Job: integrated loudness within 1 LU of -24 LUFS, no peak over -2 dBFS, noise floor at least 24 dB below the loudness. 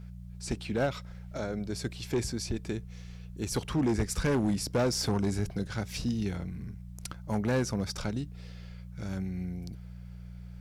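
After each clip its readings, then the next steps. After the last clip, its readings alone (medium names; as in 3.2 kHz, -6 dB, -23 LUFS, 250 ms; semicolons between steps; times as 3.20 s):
clipped samples 1.6%; clipping level -22.5 dBFS; hum 60 Hz; highest harmonic 180 Hz; hum level -42 dBFS; loudness -32.5 LUFS; peak level -22.5 dBFS; loudness target -24.0 LUFS
-> clip repair -22.5 dBFS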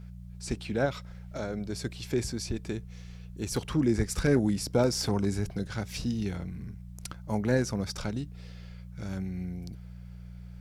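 clipped samples 0.0%; hum 60 Hz; highest harmonic 180 Hz; hum level -42 dBFS
-> de-hum 60 Hz, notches 3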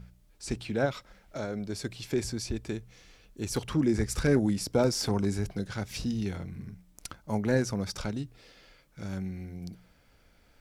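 hum not found; loudness -31.0 LUFS; peak level -14.0 dBFS; loudness target -24.0 LUFS
-> trim +7 dB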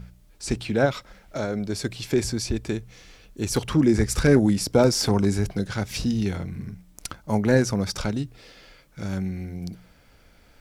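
loudness -24.0 LUFS; peak level -7.0 dBFS; noise floor -56 dBFS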